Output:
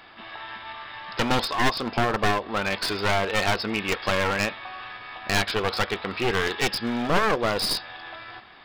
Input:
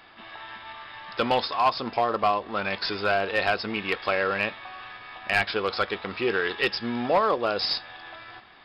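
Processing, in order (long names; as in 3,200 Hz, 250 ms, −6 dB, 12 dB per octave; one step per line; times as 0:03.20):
wavefolder on the positive side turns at −26 dBFS
level +3 dB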